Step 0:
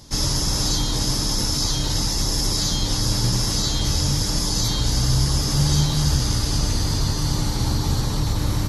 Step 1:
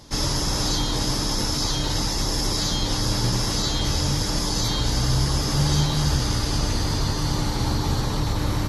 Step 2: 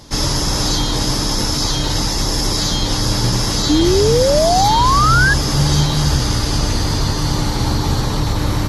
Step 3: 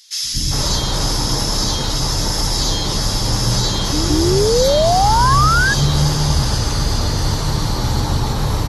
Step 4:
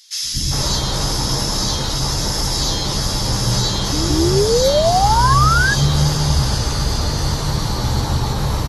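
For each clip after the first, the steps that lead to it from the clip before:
tone controls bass -5 dB, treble -7 dB; gain +2.5 dB
painted sound rise, 3.69–5.34, 290–1700 Hz -20 dBFS; gain +6 dB
three bands offset in time highs, lows, mids 0.23/0.4 s, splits 270/2200 Hz
doubler 15 ms -11 dB; gain -1 dB

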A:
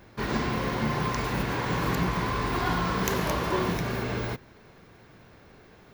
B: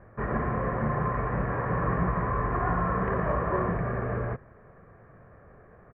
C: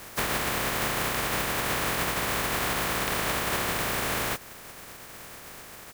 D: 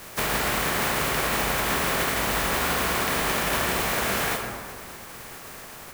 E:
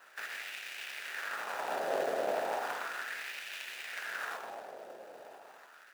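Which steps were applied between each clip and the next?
steep low-pass 1800 Hz 36 dB/oct; comb 1.7 ms, depth 45%
spectral contrast lowered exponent 0.18; compressor 6:1, threshold -34 dBFS, peak gain reduction 11.5 dB; gain +8.5 dB
plate-style reverb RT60 2 s, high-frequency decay 0.55×, DRR 1 dB; gain +1 dB
median filter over 41 samples; LFO high-pass sine 0.35 Hz 580–2500 Hz; gain -1 dB

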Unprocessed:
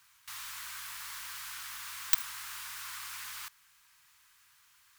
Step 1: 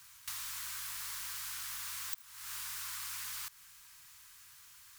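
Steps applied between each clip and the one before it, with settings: tone controls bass +7 dB, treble +6 dB; compressor 16:1, threshold -41 dBFS, peak gain reduction 28.5 dB; gain +3 dB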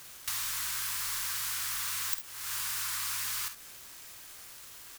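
bit-crush 9-bit; on a send: early reflections 50 ms -10.5 dB, 67 ms -13 dB; on the sum: gain +7 dB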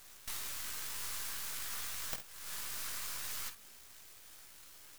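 chorus voices 6, 1.2 Hz, delay 19 ms, depth 3 ms; half-wave rectifier

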